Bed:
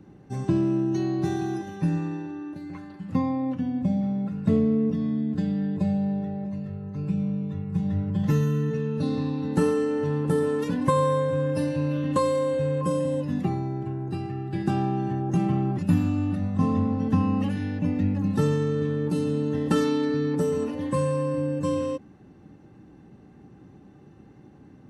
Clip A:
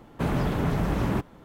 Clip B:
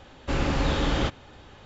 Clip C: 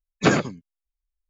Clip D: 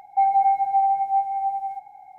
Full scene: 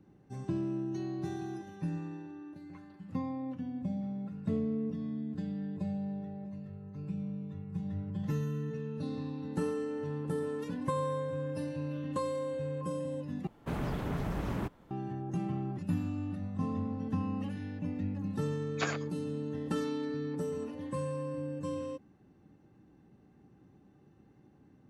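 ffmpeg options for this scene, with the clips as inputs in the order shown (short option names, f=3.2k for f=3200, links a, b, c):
-filter_complex "[0:a]volume=-11dB[a];[3:a]highpass=730[b];[a]asplit=2[c][d];[c]atrim=end=13.474[e];[1:a]atrim=end=1.44,asetpts=PTS-STARTPTS,volume=-9dB[f];[d]atrim=start=14.906[g];[b]atrim=end=1.29,asetpts=PTS-STARTPTS,volume=-11.5dB,afade=t=in:d=0.004:c=hsin,afade=t=out:st=1.286:d=0.004:c=hsin,adelay=18560[h];[e][f]acrossfade=d=0.004:c1=hsin:c2=hsin[i];[i][g]acrossfade=d=0.004:c1=hsin:c2=hsin[j];[j][h]amix=inputs=2:normalize=0"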